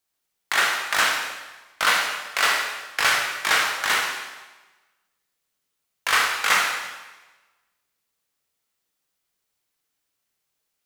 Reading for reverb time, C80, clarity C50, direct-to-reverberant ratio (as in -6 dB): 1.2 s, 4.5 dB, 2.5 dB, -1.0 dB